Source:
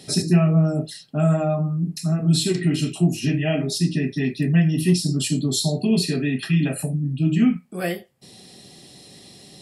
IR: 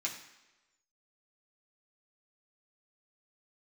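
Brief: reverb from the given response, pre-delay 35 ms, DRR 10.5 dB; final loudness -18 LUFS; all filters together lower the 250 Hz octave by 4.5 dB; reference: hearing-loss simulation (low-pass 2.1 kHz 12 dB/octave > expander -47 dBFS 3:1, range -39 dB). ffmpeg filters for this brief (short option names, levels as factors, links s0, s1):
-filter_complex "[0:a]equalizer=f=250:t=o:g=-8,asplit=2[s0][s1];[1:a]atrim=start_sample=2205,adelay=35[s2];[s1][s2]afir=irnorm=-1:irlink=0,volume=0.224[s3];[s0][s3]amix=inputs=2:normalize=0,lowpass=2100,agate=range=0.0112:threshold=0.00447:ratio=3,volume=2.24"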